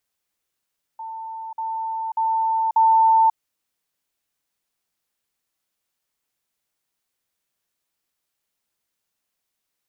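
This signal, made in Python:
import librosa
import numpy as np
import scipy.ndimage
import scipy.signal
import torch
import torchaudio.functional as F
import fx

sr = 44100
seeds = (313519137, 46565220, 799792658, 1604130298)

y = fx.level_ladder(sr, hz=894.0, from_db=-30.0, step_db=6.0, steps=4, dwell_s=0.54, gap_s=0.05)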